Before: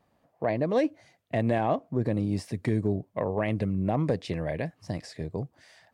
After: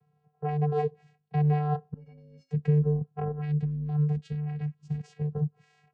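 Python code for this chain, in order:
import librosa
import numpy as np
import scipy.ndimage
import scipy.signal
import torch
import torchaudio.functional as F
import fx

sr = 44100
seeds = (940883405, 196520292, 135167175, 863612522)

y = fx.peak_eq(x, sr, hz=550.0, db=-12.5, octaves=2.5, at=(3.31, 4.98))
y = fx.vocoder(y, sr, bands=8, carrier='square', carrier_hz=149.0)
y = fx.stiff_resonator(y, sr, f0_hz=260.0, decay_s=0.31, stiffness=0.03, at=(1.94, 2.51))
y = F.gain(torch.from_numpy(y), 3.0).numpy()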